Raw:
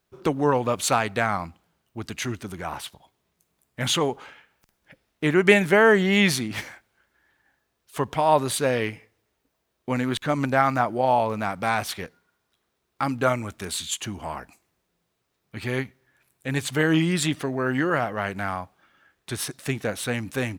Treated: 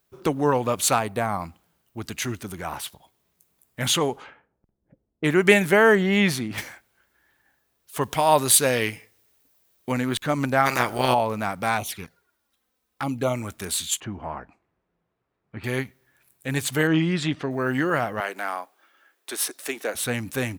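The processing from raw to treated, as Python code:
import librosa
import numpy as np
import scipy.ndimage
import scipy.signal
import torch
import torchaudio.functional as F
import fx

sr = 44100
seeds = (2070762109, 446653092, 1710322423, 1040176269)

y = fx.spec_box(x, sr, start_s=0.99, length_s=0.42, low_hz=1200.0, high_hz=8200.0, gain_db=-7)
y = fx.env_lowpass(y, sr, base_hz=350.0, full_db=-23.0, at=(3.89, 5.28), fade=0.02)
y = fx.high_shelf(y, sr, hz=3900.0, db=-10.0, at=(5.95, 6.58))
y = fx.high_shelf(y, sr, hz=2500.0, db=8.0, at=(8.01, 9.92))
y = fx.spec_clip(y, sr, under_db=22, at=(10.65, 11.13), fade=0.02)
y = fx.env_flanger(y, sr, rest_ms=4.0, full_db=-23.0, at=(11.77, 13.34), fade=0.02)
y = fx.lowpass(y, sr, hz=1700.0, slope=12, at=(14.0, 15.64))
y = fx.air_absorb(y, sr, metres=150.0, at=(16.87, 17.51))
y = fx.highpass(y, sr, hz=310.0, slope=24, at=(18.2, 19.95))
y = fx.high_shelf(y, sr, hz=9800.0, db=11.5)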